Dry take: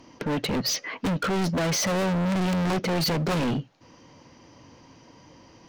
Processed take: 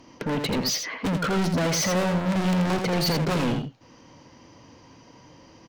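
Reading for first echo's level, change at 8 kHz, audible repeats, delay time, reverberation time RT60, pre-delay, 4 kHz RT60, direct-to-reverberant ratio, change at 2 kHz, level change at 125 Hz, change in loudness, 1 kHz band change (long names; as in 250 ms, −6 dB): −6.0 dB, +1.0 dB, 1, 83 ms, no reverb audible, no reverb audible, no reverb audible, no reverb audible, +1.0 dB, +1.0 dB, +1.0 dB, +1.0 dB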